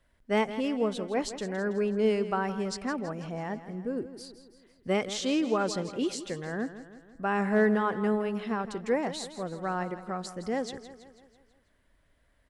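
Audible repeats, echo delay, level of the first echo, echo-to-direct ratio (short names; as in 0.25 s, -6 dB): 5, 0.164 s, -13.0 dB, -11.5 dB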